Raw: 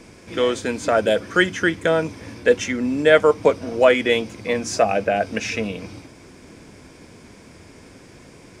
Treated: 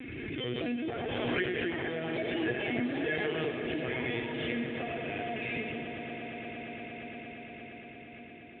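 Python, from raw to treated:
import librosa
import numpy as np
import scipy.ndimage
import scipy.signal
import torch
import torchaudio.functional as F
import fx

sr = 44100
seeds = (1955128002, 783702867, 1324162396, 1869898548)

y = fx.spec_quant(x, sr, step_db=15)
y = fx.rider(y, sr, range_db=3, speed_s=0.5)
y = fx.band_shelf(y, sr, hz=880.0, db=-12.0, octaves=1.7)
y = fx.comb_fb(y, sr, f0_hz=240.0, decay_s=0.31, harmonics='odd', damping=0.0, mix_pct=80)
y = fx.rev_freeverb(y, sr, rt60_s=0.61, hf_ratio=0.65, predelay_ms=45, drr_db=3.0)
y = fx.echo_pitch(y, sr, ms=326, semitones=5, count=2, db_per_echo=-6.0)
y = fx.lpc_vocoder(y, sr, seeds[0], excitation='pitch_kept', order=16)
y = fx.cabinet(y, sr, low_hz=110.0, low_slope=12, high_hz=3000.0, hz=(210.0, 540.0, 920.0), db=(-8, -5, -5))
y = fx.echo_swell(y, sr, ms=116, loudest=8, wet_db=-15.5)
y = fx.pre_swell(y, sr, db_per_s=20.0)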